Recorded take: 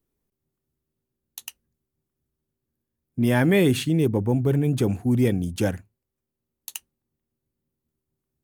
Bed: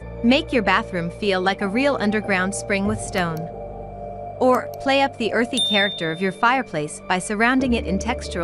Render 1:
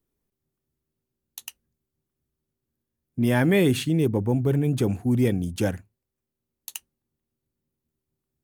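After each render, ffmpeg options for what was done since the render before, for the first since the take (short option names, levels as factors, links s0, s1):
-af "volume=0.891"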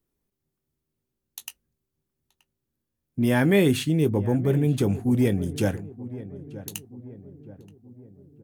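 -filter_complex "[0:a]asplit=2[s0][s1];[s1]adelay=20,volume=0.211[s2];[s0][s2]amix=inputs=2:normalize=0,asplit=2[s3][s4];[s4]adelay=927,lowpass=f=1100:p=1,volume=0.178,asplit=2[s5][s6];[s6]adelay=927,lowpass=f=1100:p=1,volume=0.51,asplit=2[s7][s8];[s8]adelay=927,lowpass=f=1100:p=1,volume=0.51,asplit=2[s9][s10];[s10]adelay=927,lowpass=f=1100:p=1,volume=0.51,asplit=2[s11][s12];[s12]adelay=927,lowpass=f=1100:p=1,volume=0.51[s13];[s3][s5][s7][s9][s11][s13]amix=inputs=6:normalize=0"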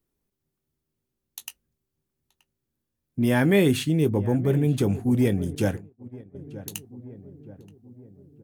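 -filter_complex "[0:a]asettb=1/sr,asplit=3[s0][s1][s2];[s0]atrim=end=5.554[s3];[s1]atrim=start=5.55:end=6.35,asetpts=PTS-STARTPTS,afade=t=in:d=0.004:c=qsin,afade=t=out:st=0.796:d=0.004:c=qsin,agate=range=0.0224:threshold=0.0316:ratio=3:release=100:detection=peak[s4];[s2]atrim=start=6.346[s5];[s3][s4]acrossfade=d=0.004:c1=hsin:c2=qsin[s6];[s6][s5]acrossfade=d=0.004:c1=qsin:c2=hsin"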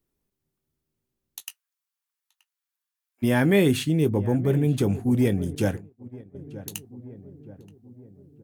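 -filter_complex "[0:a]asplit=3[s0][s1][s2];[s0]afade=t=out:st=1.4:d=0.02[s3];[s1]highpass=f=990:w=0.5412,highpass=f=990:w=1.3066,afade=t=in:st=1.4:d=0.02,afade=t=out:st=3.22:d=0.02[s4];[s2]afade=t=in:st=3.22:d=0.02[s5];[s3][s4][s5]amix=inputs=3:normalize=0"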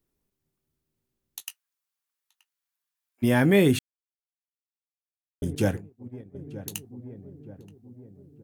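-filter_complex "[0:a]asplit=3[s0][s1][s2];[s0]atrim=end=3.79,asetpts=PTS-STARTPTS,afade=t=out:st=3.786:d=0.004:c=hsin[s3];[s1]atrim=start=3.79:end=5.42,asetpts=PTS-STARTPTS,volume=0[s4];[s2]atrim=start=5.42,asetpts=PTS-STARTPTS,afade=t=in:d=0.004:c=hsin[s5];[s3][s4][s5]concat=n=3:v=0:a=1"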